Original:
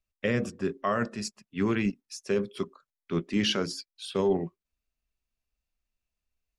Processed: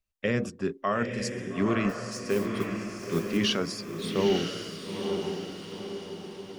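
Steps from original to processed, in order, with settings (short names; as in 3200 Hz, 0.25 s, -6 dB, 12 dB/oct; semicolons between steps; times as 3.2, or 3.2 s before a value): 1.89–3.37 modulation noise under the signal 21 dB; diffused feedback echo 0.9 s, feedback 51%, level -4.5 dB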